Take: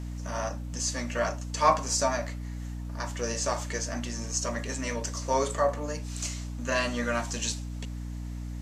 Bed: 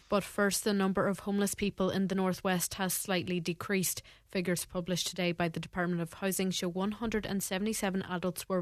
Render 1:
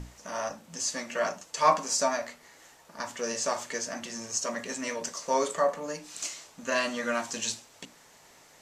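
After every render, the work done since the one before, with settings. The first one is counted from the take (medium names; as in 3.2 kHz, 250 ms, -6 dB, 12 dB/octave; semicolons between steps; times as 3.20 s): hum notches 60/120/180/240/300/360 Hz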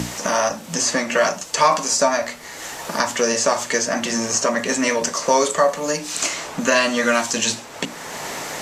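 loudness maximiser +12 dB; three bands compressed up and down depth 70%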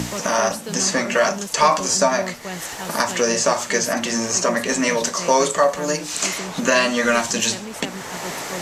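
add bed -1.5 dB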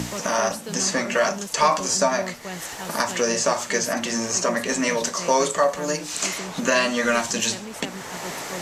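trim -3 dB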